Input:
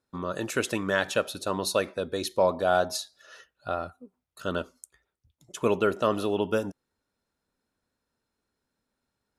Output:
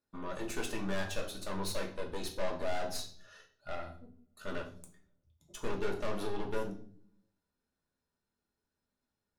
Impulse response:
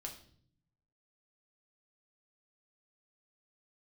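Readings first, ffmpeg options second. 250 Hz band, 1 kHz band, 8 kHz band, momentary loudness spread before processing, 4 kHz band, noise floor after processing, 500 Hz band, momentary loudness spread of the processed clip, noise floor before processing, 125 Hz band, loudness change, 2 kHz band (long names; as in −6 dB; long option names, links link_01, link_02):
−9.0 dB, −11.5 dB, −8.5 dB, 13 LU, −8.5 dB, below −85 dBFS, −11.5 dB, 17 LU, −83 dBFS, −7.0 dB, −11.0 dB, −10.5 dB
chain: -filter_complex "[0:a]aeval=exprs='(tanh(28.2*val(0)+0.65)-tanh(0.65))/28.2':channel_layout=same[link_01];[1:a]atrim=start_sample=2205,asetrate=52920,aresample=44100[link_02];[link_01][link_02]afir=irnorm=-1:irlink=0,volume=1dB"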